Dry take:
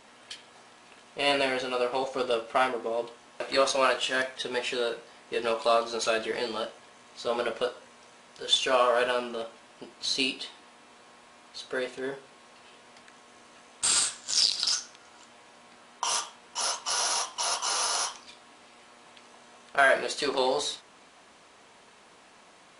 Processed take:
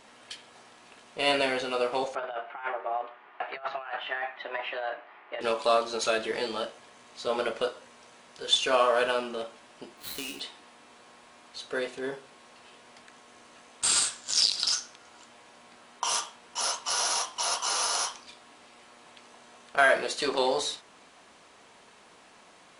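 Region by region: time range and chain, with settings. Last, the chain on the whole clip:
2.15–5.41 s: compressor with a negative ratio -29 dBFS, ratio -0.5 + frequency shift +130 Hz + cabinet simulation 160–2400 Hz, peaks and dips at 250 Hz -5 dB, 360 Hz -5 dB, 530 Hz -10 dB
9.97–10.40 s: dead-time distortion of 0.1 ms + doubling 14 ms -3 dB + compression 12:1, threshold -31 dBFS
whole clip: none

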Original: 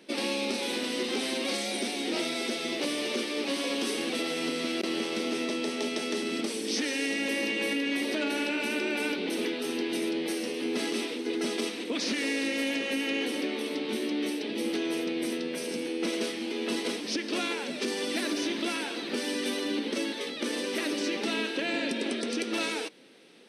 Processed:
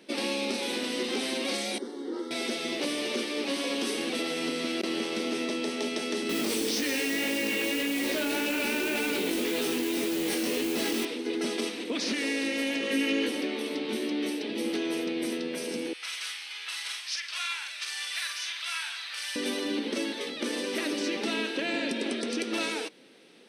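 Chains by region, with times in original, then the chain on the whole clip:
1.78–2.31 s: low-pass 1 kHz 6 dB/octave + static phaser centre 670 Hz, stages 6
6.29–11.05 s: chorus 1.8 Hz, delay 17.5 ms, depth 3.8 ms + modulation noise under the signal 11 dB + level flattener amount 100%
12.81–13.29 s: peaking EQ 760 Hz -12 dB 0.23 oct + doubling 18 ms -3 dB
15.93–19.36 s: high-pass 1.2 kHz 24 dB/octave + doubling 46 ms -5 dB
whole clip: none

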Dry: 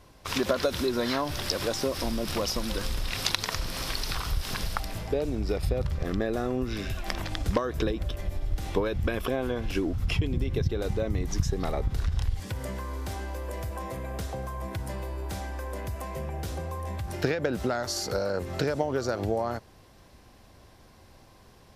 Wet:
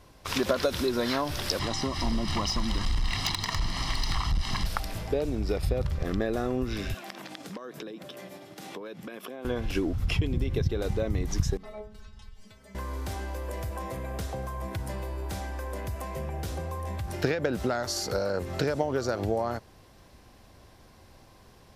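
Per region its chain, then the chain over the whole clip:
1.59–4.66 s: low-pass 5.9 kHz + comb 1 ms, depth 78% + overload inside the chain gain 21 dB
6.94–9.45 s: steep high-pass 160 Hz + compression 4:1, threshold -38 dBFS
11.57–12.75 s: treble shelf 12 kHz -10.5 dB + inharmonic resonator 210 Hz, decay 0.3 s, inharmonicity 0.002 + hard clipper -32 dBFS
whole clip: none

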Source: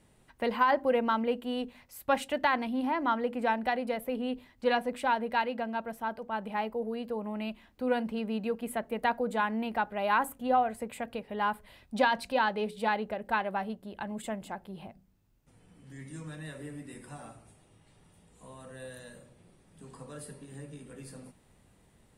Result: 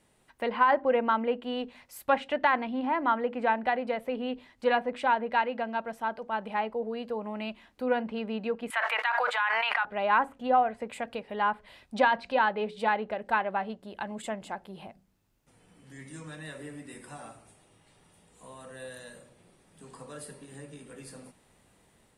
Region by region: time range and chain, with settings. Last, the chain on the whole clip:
8.70–9.85 s: high-pass 1.1 kHz 24 dB/octave + level flattener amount 100%
whole clip: low-pass that closes with the level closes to 2.6 kHz, closed at -26.5 dBFS; bass shelf 240 Hz -9 dB; level rider gain up to 3.5 dB

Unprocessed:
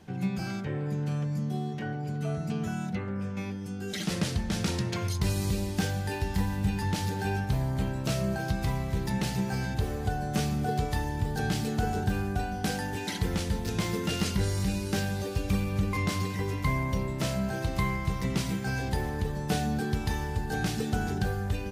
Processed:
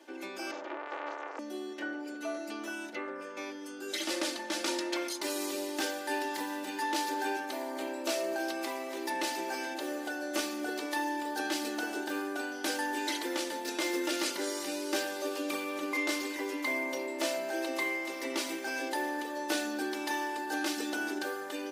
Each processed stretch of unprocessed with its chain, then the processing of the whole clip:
0.51–1.39 s: careless resampling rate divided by 3×, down none, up filtered + transformer saturation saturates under 1.4 kHz
whole clip: elliptic high-pass 300 Hz, stop band 50 dB; comb 3.4 ms, depth 78%

